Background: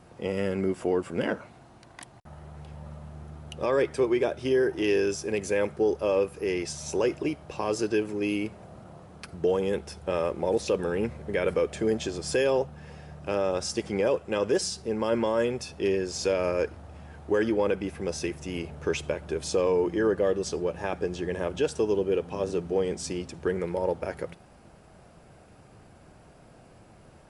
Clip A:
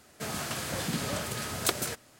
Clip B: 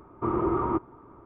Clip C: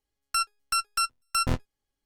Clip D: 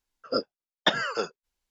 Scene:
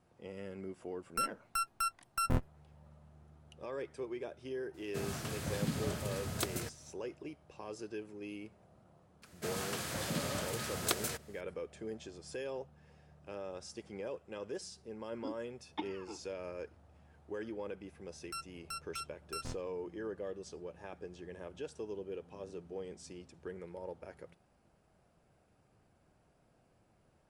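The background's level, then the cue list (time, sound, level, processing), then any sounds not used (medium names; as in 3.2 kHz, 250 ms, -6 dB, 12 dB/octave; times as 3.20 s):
background -17 dB
0.83 s: add C -4 dB + peaking EQ 4.7 kHz -12 dB 1.9 oct
4.74 s: add A -9.5 dB + bass shelf 280 Hz +11 dB
9.22 s: add A -5 dB
14.91 s: add D -2.5 dB + vowel filter u
17.98 s: add C -17 dB
not used: B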